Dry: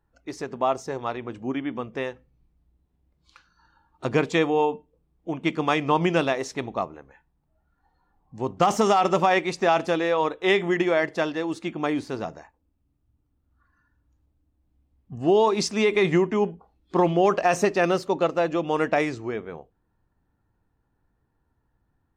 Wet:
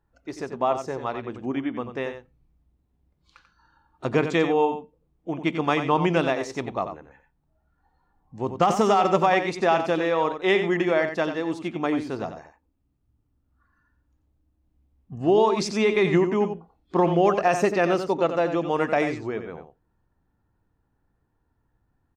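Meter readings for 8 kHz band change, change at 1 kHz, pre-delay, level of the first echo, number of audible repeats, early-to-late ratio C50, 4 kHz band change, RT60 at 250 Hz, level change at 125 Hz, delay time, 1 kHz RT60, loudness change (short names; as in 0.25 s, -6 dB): -3.5 dB, +0.5 dB, none, -9.0 dB, 1, none, -1.5 dB, none, +0.5 dB, 90 ms, none, 0.0 dB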